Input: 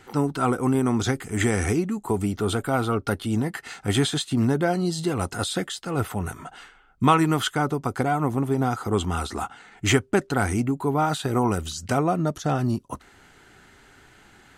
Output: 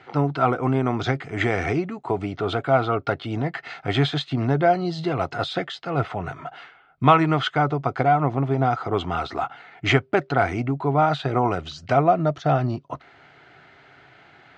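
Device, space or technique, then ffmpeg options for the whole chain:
guitar cabinet: -af "highpass=110,equalizer=frequency=140:width_type=q:width=4:gain=7,equalizer=frequency=210:width_type=q:width=4:gain=-9,equalizer=frequency=670:width_type=q:width=4:gain=10,equalizer=frequency=1300:width_type=q:width=4:gain=3,equalizer=frequency=2200:width_type=q:width=4:gain=5,lowpass=frequency=4500:width=0.5412,lowpass=frequency=4500:width=1.3066"

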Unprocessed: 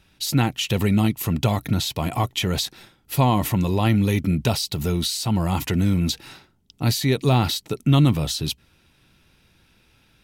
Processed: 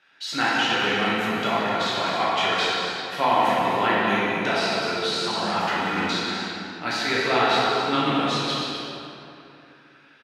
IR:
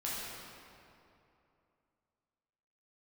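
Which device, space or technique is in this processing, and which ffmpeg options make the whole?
station announcement: -filter_complex "[0:a]highpass=460,lowpass=4200,equalizer=frequency=1600:width_type=o:width=0.59:gain=10.5,aecho=1:1:174.9|253.6:0.316|0.355[link_01];[1:a]atrim=start_sample=2205[link_02];[link_01][link_02]afir=irnorm=-1:irlink=0,asplit=3[link_03][link_04][link_05];[link_03]afade=type=out:start_time=5.95:duration=0.02[link_06];[link_04]asplit=2[link_07][link_08];[link_08]adelay=46,volume=-3.5dB[link_09];[link_07][link_09]amix=inputs=2:normalize=0,afade=type=in:start_time=5.95:duration=0.02,afade=type=out:start_time=6.83:duration=0.02[link_10];[link_05]afade=type=in:start_time=6.83:duration=0.02[link_11];[link_06][link_10][link_11]amix=inputs=3:normalize=0"

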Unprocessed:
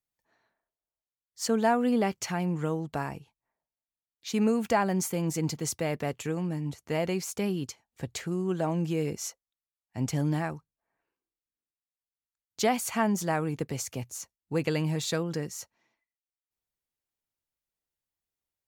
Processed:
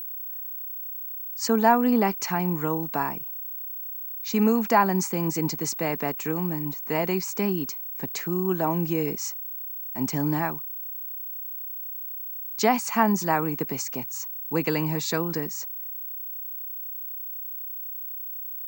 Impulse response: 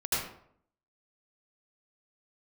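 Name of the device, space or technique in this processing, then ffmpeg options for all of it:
old television with a line whistle: -af "highpass=frequency=170:width=0.5412,highpass=frequency=170:width=1.3066,equalizer=frequency=550:width_type=q:width=4:gain=-7,equalizer=frequency=990:width_type=q:width=4:gain=6,equalizer=frequency=3300:width_type=q:width=4:gain=-9,lowpass=frequency=7500:width=0.5412,lowpass=frequency=7500:width=1.3066,aeval=exprs='val(0)+0.0141*sin(2*PI*15734*n/s)':channel_layout=same,volume=5dB"

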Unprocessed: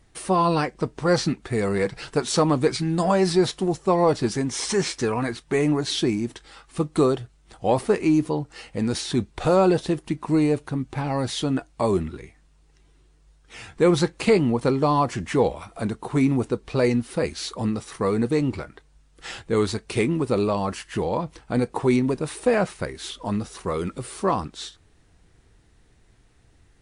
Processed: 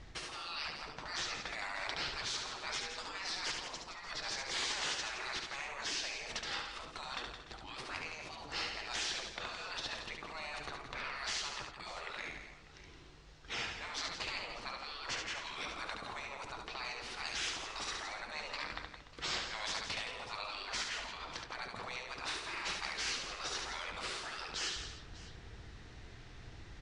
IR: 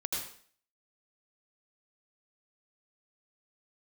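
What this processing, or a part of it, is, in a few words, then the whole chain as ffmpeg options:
compression on the reversed sound: -af "areverse,acompressor=threshold=-31dB:ratio=16,areverse,afftfilt=real='re*lt(hypot(re,im),0.02)':imag='im*lt(hypot(re,im),0.02)':win_size=1024:overlap=0.75,lowpass=frequency=5800:width=0.5412,lowpass=frequency=5800:width=1.3066,equalizer=frequency=240:width=0.38:gain=-4.5,aecho=1:1:71|168|230|294|595:0.596|0.376|0.158|0.158|0.133,volume=8dB"

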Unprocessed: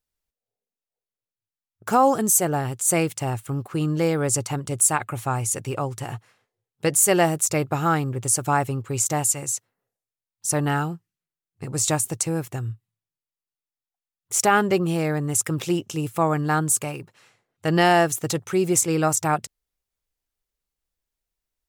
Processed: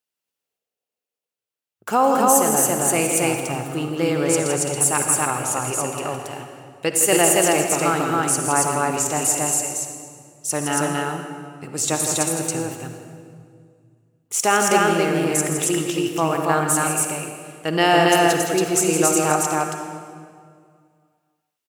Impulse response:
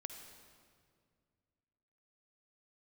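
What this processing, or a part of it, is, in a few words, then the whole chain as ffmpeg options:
stadium PA: -filter_complex "[0:a]highpass=210,equalizer=frequency=2800:width_type=o:width=0.34:gain=5.5,aecho=1:1:163.3|277:0.398|0.891[link_01];[1:a]atrim=start_sample=2205[link_02];[link_01][link_02]afir=irnorm=-1:irlink=0,volume=4dB"

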